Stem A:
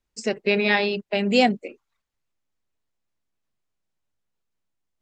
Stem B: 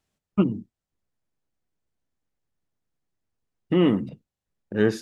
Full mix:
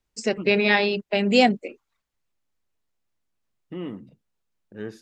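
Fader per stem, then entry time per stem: +1.0, −14.0 decibels; 0.00, 0.00 seconds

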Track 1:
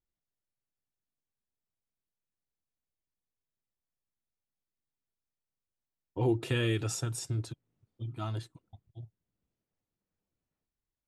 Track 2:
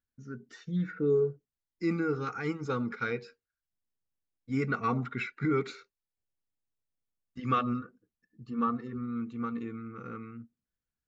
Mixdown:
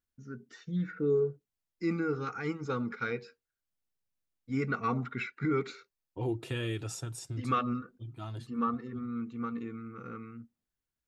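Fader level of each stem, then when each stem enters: −5.0, −1.5 decibels; 0.00, 0.00 seconds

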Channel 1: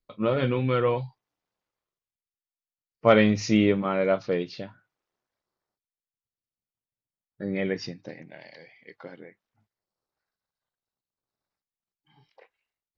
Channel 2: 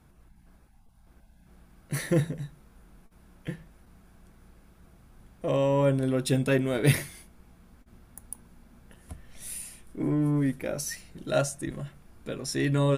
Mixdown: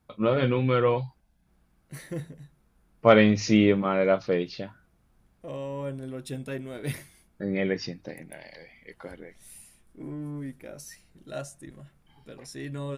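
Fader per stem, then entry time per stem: +1.0, −10.5 decibels; 0.00, 0.00 seconds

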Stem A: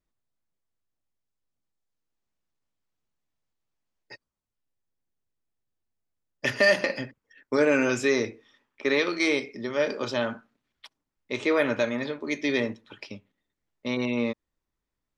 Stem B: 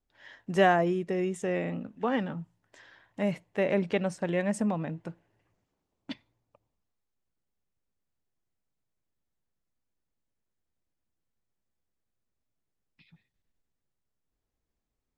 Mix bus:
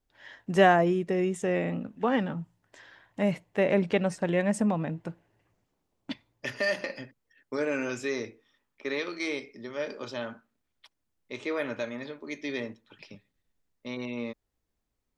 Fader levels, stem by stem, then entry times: −8.0, +2.5 decibels; 0.00, 0.00 seconds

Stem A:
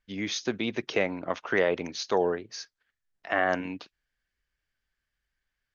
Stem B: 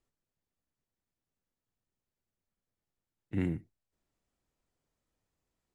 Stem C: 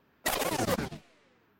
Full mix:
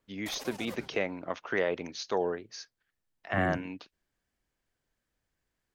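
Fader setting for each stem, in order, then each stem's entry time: −4.5, 0.0, −14.5 decibels; 0.00, 0.00, 0.00 seconds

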